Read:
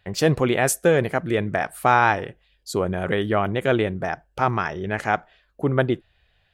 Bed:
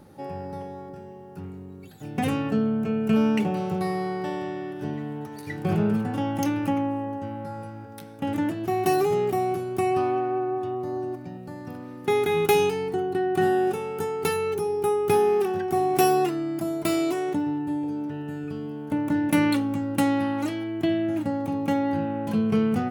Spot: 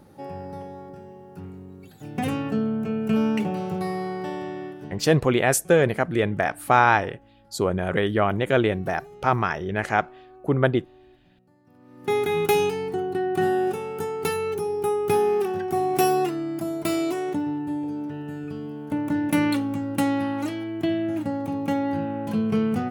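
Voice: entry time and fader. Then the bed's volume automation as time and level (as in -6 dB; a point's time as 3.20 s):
4.85 s, 0.0 dB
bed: 4.66 s -1 dB
5.32 s -22.5 dB
11.64 s -22.5 dB
12.11 s -0.5 dB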